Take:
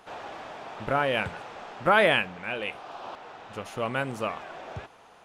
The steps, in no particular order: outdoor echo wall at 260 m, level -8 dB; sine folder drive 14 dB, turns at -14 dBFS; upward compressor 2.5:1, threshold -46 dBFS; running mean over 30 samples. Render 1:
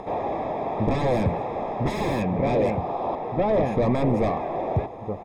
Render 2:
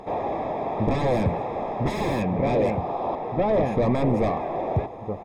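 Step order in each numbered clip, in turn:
outdoor echo > upward compressor > sine folder > running mean; outdoor echo > sine folder > running mean > upward compressor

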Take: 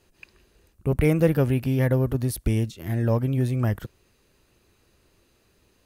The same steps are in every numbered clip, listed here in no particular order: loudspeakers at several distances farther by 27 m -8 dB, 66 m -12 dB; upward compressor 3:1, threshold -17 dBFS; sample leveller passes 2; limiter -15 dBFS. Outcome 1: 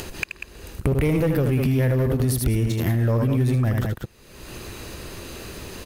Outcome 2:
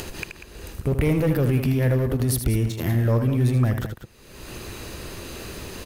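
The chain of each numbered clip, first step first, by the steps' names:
sample leveller > loudspeakers at several distances > limiter > upward compressor; sample leveller > upward compressor > limiter > loudspeakers at several distances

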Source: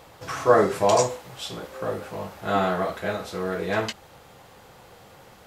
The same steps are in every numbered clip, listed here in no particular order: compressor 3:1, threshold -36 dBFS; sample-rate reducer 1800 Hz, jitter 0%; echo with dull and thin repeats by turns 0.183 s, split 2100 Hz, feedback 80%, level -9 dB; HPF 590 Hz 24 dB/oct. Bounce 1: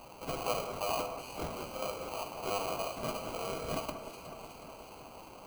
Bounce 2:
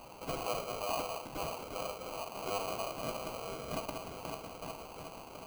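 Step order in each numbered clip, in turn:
HPF > compressor > sample-rate reducer > echo with dull and thin repeats by turns; echo with dull and thin repeats by turns > compressor > HPF > sample-rate reducer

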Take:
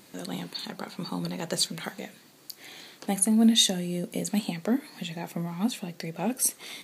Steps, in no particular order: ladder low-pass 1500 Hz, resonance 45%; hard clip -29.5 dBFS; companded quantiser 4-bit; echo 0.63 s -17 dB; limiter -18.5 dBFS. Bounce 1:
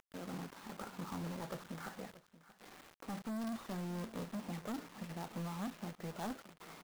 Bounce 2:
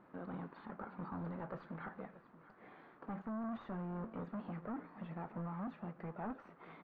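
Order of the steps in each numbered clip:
limiter > hard clip > ladder low-pass > companded quantiser > echo; limiter > hard clip > echo > companded quantiser > ladder low-pass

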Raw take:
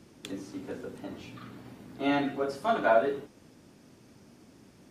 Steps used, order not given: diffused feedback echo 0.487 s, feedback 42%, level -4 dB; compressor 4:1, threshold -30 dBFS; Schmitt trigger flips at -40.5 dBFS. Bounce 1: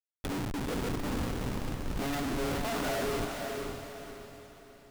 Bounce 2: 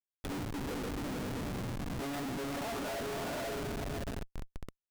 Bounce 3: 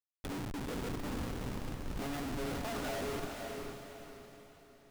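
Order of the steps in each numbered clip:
Schmitt trigger > compressor > diffused feedback echo; compressor > diffused feedback echo > Schmitt trigger; compressor > Schmitt trigger > diffused feedback echo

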